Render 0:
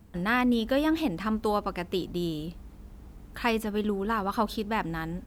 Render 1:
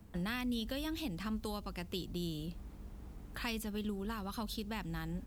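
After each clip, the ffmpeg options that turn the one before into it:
-filter_complex "[0:a]acrossover=split=170|3000[s0][s1][s2];[s1]acompressor=threshold=0.00891:ratio=4[s3];[s0][s3][s2]amix=inputs=3:normalize=0,volume=0.75"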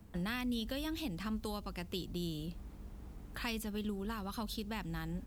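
-af anull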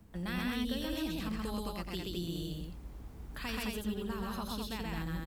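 -af "aecho=1:1:90.38|128.3|212.8:0.316|0.891|0.708,volume=0.841"

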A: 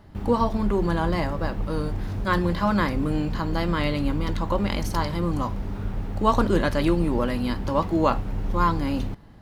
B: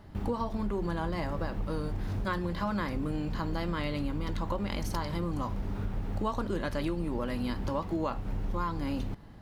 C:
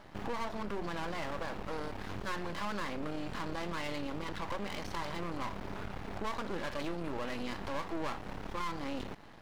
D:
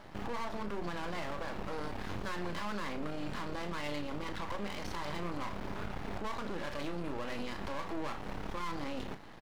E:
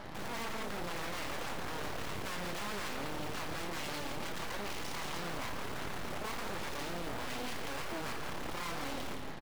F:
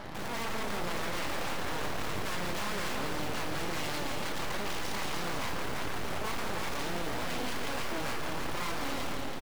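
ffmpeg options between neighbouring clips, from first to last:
-af "acompressor=threshold=0.0447:ratio=6,volume=0.841"
-filter_complex "[0:a]acrossover=split=4500[s0][s1];[s1]acompressor=threshold=0.00112:ratio=4:attack=1:release=60[s2];[s0][s2]amix=inputs=2:normalize=0,asplit=2[s3][s4];[s4]highpass=f=720:p=1,volume=11.2,asoftclip=type=tanh:threshold=0.112[s5];[s3][s5]amix=inputs=2:normalize=0,lowpass=f=4000:p=1,volume=0.501,aeval=exprs='max(val(0),0)':c=same,volume=0.531"
-filter_complex "[0:a]alimiter=level_in=2:limit=0.0631:level=0:latency=1:release=103,volume=0.501,asplit=2[s0][s1];[s1]adelay=34,volume=0.316[s2];[s0][s2]amix=inputs=2:normalize=0,volume=1.19"
-filter_complex "[0:a]asplit=2[s0][s1];[s1]aeval=exprs='(mod(94.4*val(0)+1,2)-1)/94.4':c=same,volume=0.376[s2];[s0][s2]amix=inputs=2:normalize=0,aecho=1:1:166:0.473,aeval=exprs='0.015*(abs(mod(val(0)/0.015+3,4)-2)-1)':c=same,volume=1.5"
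-af "aecho=1:1:330:0.531,volume=1.5"

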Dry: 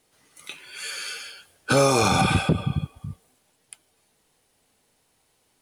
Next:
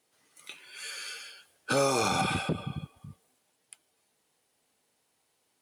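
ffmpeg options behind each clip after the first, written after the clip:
-af "highpass=f=200:p=1,volume=0.473"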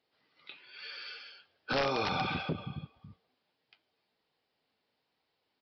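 -af "crystalizer=i=0.5:c=0,aresample=11025,aeval=exprs='(mod(7.94*val(0)+1,2)-1)/7.94':c=same,aresample=44100,flanger=delay=1.3:depth=8.8:regen=-70:speed=0.93:shape=triangular"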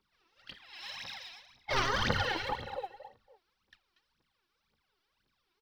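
-af "aeval=exprs='val(0)*sin(2*PI*670*n/s)':c=same,aecho=1:1:236:0.251,aphaser=in_gain=1:out_gain=1:delay=3.1:decay=0.78:speed=1.9:type=triangular"

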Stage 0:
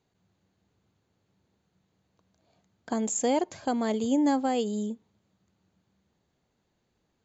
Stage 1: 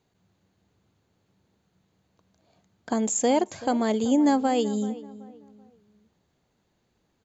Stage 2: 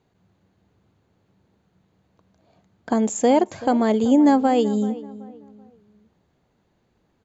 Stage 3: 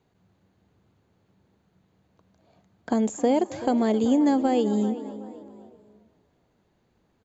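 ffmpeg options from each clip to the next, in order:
-filter_complex "[0:a]asplit=2[s0][s1];[s1]adelay=382,lowpass=f=1800:p=1,volume=0.15,asplit=2[s2][s3];[s3]adelay=382,lowpass=f=1800:p=1,volume=0.34,asplit=2[s4][s5];[s5]adelay=382,lowpass=f=1800:p=1,volume=0.34[s6];[s0][s2][s4][s6]amix=inputs=4:normalize=0,volume=1.5"
-af "highshelf=f=3400:g=-10,volume=1.88"
-filter_complex "[0:a]acrossover=split=770|1900[s0][s1][s2];[s0]acompressor=threshold=0.141:ratio=4[s3];[s1]acompressor=threshold=0.0141:ratio=4[s4];[s2]acompressor=threshold=0.0141:ratio=4[s5];[s3][s4][s5]amix=inputs=3:normalize=0,asplit=5[s6][s7][s8][s9][s10];[s7]adelay=264,afreqshift=53,volume=0.133[s11];[s8]adelay=528,afreqshift=106,volume=0.0624[s12];[s9]adelay=792,afreqshift=159,volume=0.0295[s13];[s10]adelay=1056,afreqshift=212,volume=0.0138[s14];[s6][s11][s12][s13][s14]amix=inputs=5:normalize=0,volume=0.841"

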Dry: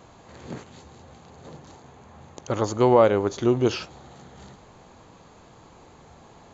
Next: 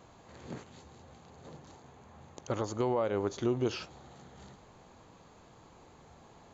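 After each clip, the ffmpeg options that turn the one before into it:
-af "alimiter=limit=0.211:level=0:latency=1:release=185,volume=0.473"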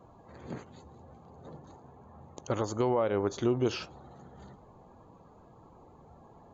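-af "afftdn=nr=17:nf=-58,volume=1.33"

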